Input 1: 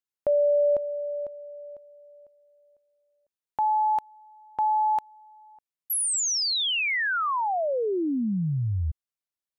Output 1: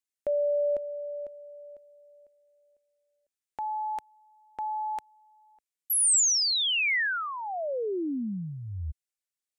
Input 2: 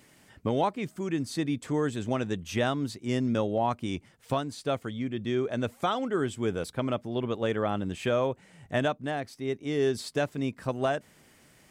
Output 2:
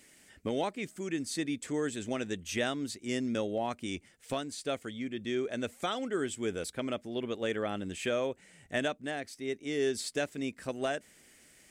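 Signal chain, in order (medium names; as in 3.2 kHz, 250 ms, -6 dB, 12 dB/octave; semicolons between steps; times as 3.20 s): ten-band graphic EQ 125 Hz -10 dB, 1 kHz -8 dB, 2 kHz +4 dB, 8 kHz +7 dB; trim -2.5 dB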